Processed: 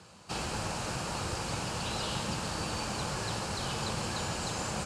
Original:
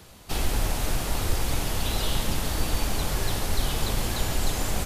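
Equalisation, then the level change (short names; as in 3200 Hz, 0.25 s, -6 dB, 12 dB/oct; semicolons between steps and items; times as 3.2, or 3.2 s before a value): speaker cabinet 140–7800 Hz, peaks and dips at 270 Hz -9 dB, 400 Hz -6 dB, 670 Hz -5 dB, 2000 Hz -8 dB, 3500 Hz -9 dB, 6000 Hz -5 dB; 0.0 dB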